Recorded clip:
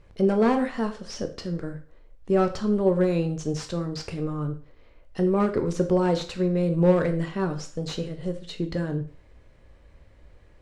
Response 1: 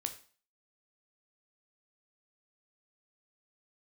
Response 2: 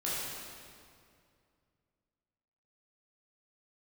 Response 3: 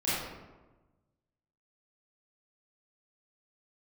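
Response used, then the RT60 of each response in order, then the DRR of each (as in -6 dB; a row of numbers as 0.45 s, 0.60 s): 1; 0.40 s, 2.3 s, 1.2 s; 6.5 dB, -9.0 dB, -12.0 dB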